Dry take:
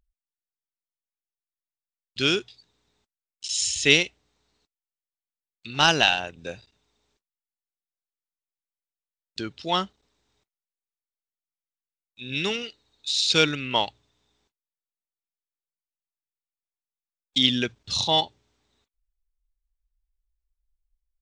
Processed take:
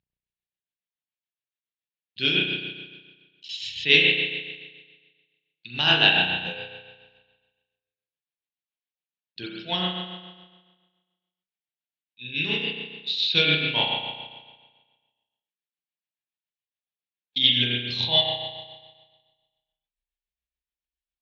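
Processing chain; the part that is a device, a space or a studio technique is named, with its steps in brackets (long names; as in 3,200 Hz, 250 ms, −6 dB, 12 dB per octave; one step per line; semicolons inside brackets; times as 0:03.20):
flat-topped bell 2,600 Hz +9.5 dB
combo amplifier with spring reverb and tremolo (spring reverb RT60 1.4 s, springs 33 ms, chirp 55 ms, DRR −4.5 dB; amplitude tremolo 7.1 Hz, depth 49%; loudspeaker in its box 91–4,600 Hz, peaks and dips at 120 Hz +5 dB, 170 Hz +8 dB, 1,300 Hz −9 dB, 2,000 Hz −5 dB)
level −7 dB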